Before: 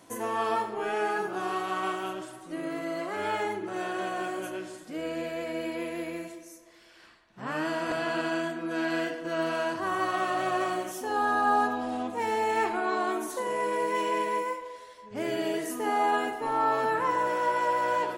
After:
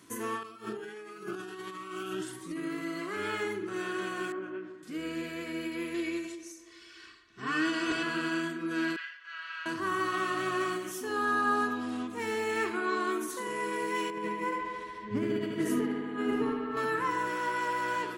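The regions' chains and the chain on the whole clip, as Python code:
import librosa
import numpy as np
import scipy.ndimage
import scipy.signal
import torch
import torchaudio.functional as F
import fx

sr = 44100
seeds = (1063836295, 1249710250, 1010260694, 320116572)

y = fx.chain(x, sr, fx.over_compress(threshold_db=-37.0, ratio=-1.0),
    fx.notch_cascade(direction='rising', hz=1.4), at=(0.43, 2.57))
y = fx.chain(y, sr, fx.lowpass(hz=1500.0, slope=12),
    fx.peak_eq(hz=81.0, db=-15.0, octaves=1.2), at=(4.32, 4.83))
y = fx.chain(y, sr, fx.lowpass(hz=6400.0, slope=12),
    fx.high_shelf(hz=3500.0, db=8.0),
    fx.comb(ms=2.7, depth=0.66), at=(5.94, 8.03))
y = fx.chain(y, sr, fx.highpass(hz=1400.0, slope=24),
    fx.air_absorb(metres=230.0), at=(8.96, 9.66))
y = fx.chain(y, sr, fx.tilt_eq(slope=-2.5),
    fx.over_compress(threshold_db=-30.0, ratio=-0.5),
    fx.echo_bbd(ms=72, stages=2048, feedback_pct=82, wet_db=-6.5), at=(14.1, 16.77))
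y = scipy.signal.sosfilt(scipy.signal.butter(2, 48.0, 'highpass', fs=sr, output='sos'), y)
y = fx.band_shelf(y, sr, hz=680.0, db=-13.5, octaves=1.0)
y = fx.end_taper(y, sr, db_per_s=100.0)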